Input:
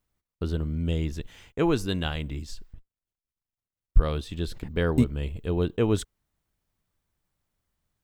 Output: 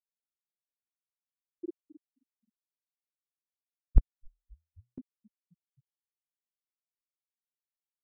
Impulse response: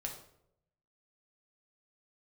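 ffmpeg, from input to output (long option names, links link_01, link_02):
-filter_complex "[0:a]lowpass=frequency=1400:poles=1,aemphasis=mode=reproduction:type=75fm,bandreject=frequency=60:width_type=h:width=6,bandreject=frequency=120:width_type=h:width=6,bandreject=frequency=180:width_type=h:width=6,bandreject=frequency=240:width_type=h:width=6,afftfilt=real='re*gte(hypot(re,im),1.12)':imag='im*gte(hypot(re,im),1.12)':win_size=1024:overlap=0.75,asplit=4[link_01][link_02][link_03][link_04];[link_02]adelay=264,afreqshift=-41,volume=-21dB[link_05];[link_03]adelay=528,afreqshift=-82,volume=-29dB[link_06];[link_04]adelay=792,afreqshift=-123,volume=-36.9dB[link_07];[link_01][link_05][link_06][link_07]amix=inputs=4:normalize=0,aeval=exprs='val(0)*pow(10,-19*if(lt(mod(-1*n/s,1),2*abs(-1)/1000),1-mod(-1*n/s,1)/(2*abs(-1)/1000),(mod(-1*n/s,1)-2*abs(-1)/1000)/(1-2*abs(-1)/1000))/20)':channel_layout=same"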